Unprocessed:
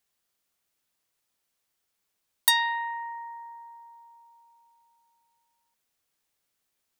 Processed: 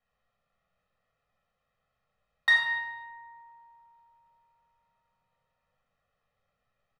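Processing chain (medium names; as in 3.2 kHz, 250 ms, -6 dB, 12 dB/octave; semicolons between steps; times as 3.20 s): low-pass 1.7 kHz 12 dB/octave; comb 1.6 ms, depth 97%; reverberation RT60 1.1 s, pre-delay 4 ms, DRR -4 dB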